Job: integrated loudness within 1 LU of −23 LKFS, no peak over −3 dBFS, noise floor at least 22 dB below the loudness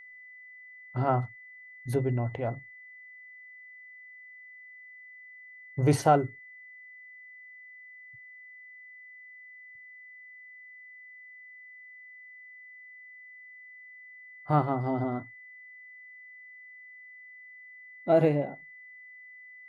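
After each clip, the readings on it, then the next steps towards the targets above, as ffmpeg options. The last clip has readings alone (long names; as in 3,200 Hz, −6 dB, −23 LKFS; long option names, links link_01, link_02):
interfering tone 2,000 Hz; level of the tone −47 dBFS; integrated loudness −28.5 LKFS; sample peak −10.5 dBFS; target loudness −23.0 LKFS
→ -af "bandreject=frequency=2000:width=30"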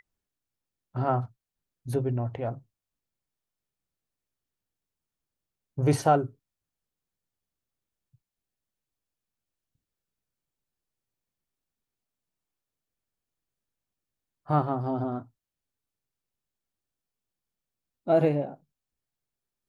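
interfering tone none found; integrated loudness −27.5 LKFS; sample peak −10.5 dBFS; target loudness −23.0 LKFS
→ -af "volume=4.5dB"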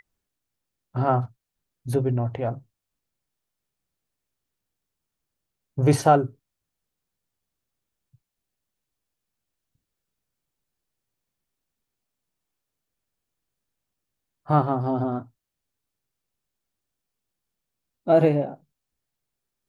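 integrated loudness −23.5 LKFS; sample peak −6.0 dBFS; background noise floor −84 dBFS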